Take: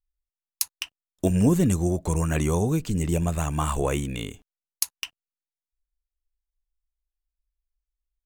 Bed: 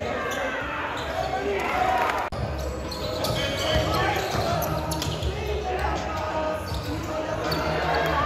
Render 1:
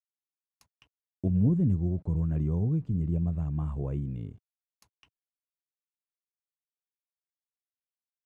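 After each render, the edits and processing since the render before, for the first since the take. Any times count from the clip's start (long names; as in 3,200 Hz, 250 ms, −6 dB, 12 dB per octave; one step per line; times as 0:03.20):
bit reduction 8 bits
resonant band-pass 120 Hz, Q 1.3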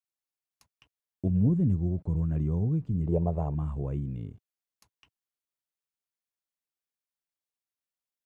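0:03.07–0:03.55: flat-topped bell 620 Hz +15.5 dB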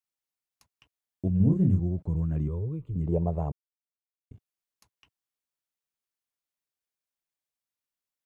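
0:01.37–0:01.80: double-tracking delay 32 ms −2.5 dB
0:02.48–0:02.96: phaser with its sweep stopped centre 1,100 Hz, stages 8
0:03.52–0:04.31: silence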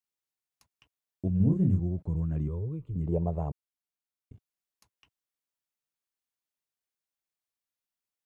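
level −2 dB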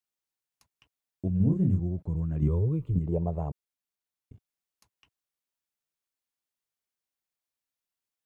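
0:02.42–0:02.99: clip gain +7.5 dB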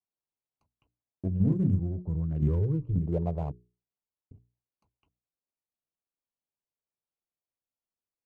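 adaptive Wiener filter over 25 samples
mains-hum notches 60/120/180/240/300/360/420 Hz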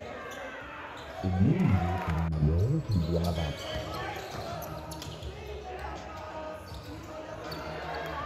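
mix in bed −12.5 dB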